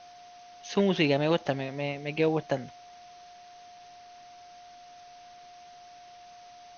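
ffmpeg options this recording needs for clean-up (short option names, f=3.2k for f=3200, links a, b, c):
-af "bandreject=f=710:w=30,afwtdn=0.0022"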